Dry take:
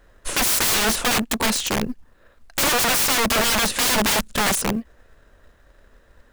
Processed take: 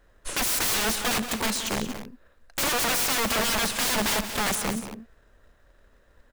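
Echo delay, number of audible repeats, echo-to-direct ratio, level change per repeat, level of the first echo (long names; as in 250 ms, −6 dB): 138 ms, 3, −9.0 dB, repeats not evenly spaced, −18.5 dB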